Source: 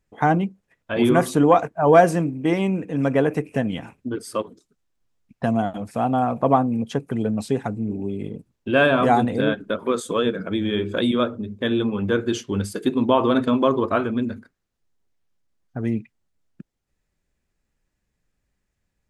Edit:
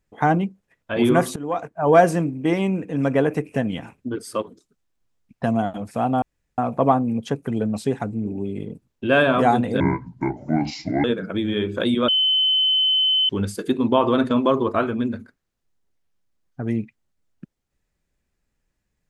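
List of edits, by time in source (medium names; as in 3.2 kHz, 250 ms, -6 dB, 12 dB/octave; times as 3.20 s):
1.36–2.02 s: fade in, from -21 dB
6.22 s: insert room tone 0.36 s
9.44–10.21 s: speed 62%
11.25–12.46 s: bleep 3.05 kHz -15.5 dBFS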